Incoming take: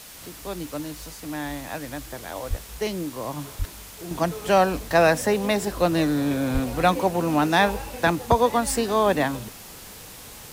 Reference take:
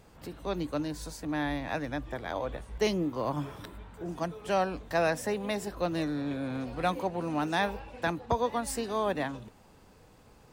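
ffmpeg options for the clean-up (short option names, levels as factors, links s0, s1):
-filter_complex "[0:a]asplit=3[s0][s1][s2];[s0]afade=t=out:st=2.49:d=0.02[s3];[s1]highpass=f=140:w=0.5412,highpass=f=140:w=1.3066,afade=t=in:st=2.49:d=0.02,afade=t=out:st=2.61:d=0.02[s4];[s2]afade=t=in:st=2.61:d=0.02[s5];[s3][s4][s5]amix=inputs=3:normalize=0,asplit=3[s6][s7][s8];[s6]afade=t=out:st=3.58:d=0.02[s9];[s7]highpass=f=140:w=0.5412,highpass=f=140:w=1.3066,afade=t=in:st=3.58:d=0.02,afade=t=out:st=3.7:d=0.02[s10];[s8]afade=t=in:st=3.7:d=0.02[s11];[s9][s10][s11]amix=inputs=3:normalize=0,asplit=3[s12][s13][s14];[s12]afade=t=out:st=6.53:d=0.02[s15];[s13]highpass=f=140:w=0.5412,highpass=f=140:w=1.3066,afade=t=in:st=6.53:d=0.02,afade=t=out:st=6.65:d=0.02[s16];[s14]afade=t=in:st=6.65:d=0.02[s17];[s15][s16][s17]amix=inputs=3:normalize=0,afwtdn=0.0079,asetnsamples=n=441:p=0,asendcmd='4.11 volume volume -9.5dB',volume=1"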